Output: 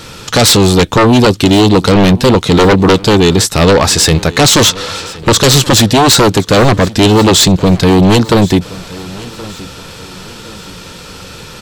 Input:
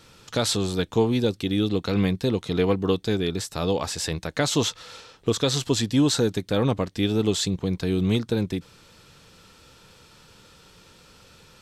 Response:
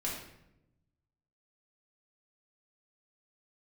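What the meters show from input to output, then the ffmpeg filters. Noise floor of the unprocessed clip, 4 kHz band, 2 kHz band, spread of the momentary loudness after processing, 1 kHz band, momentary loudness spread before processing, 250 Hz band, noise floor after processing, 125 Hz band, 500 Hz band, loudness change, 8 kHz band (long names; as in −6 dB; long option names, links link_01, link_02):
−53 dBFS, +18.0 dB, +19.0 dB, 18 LU, +21.5 dB, 6 LU, +15.0 dB, −31 dBFS, +16.0 dB, +15.5 dB, +16.5 dB, +19.0 dB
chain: -af "aeval=exprs='0.335*sin(PI/2*3.55*val(0)/0.335)':channel_layout=same,aecho=1:1:1073|2146|3219:0.1|0.04|0.016,volume=6.5dB"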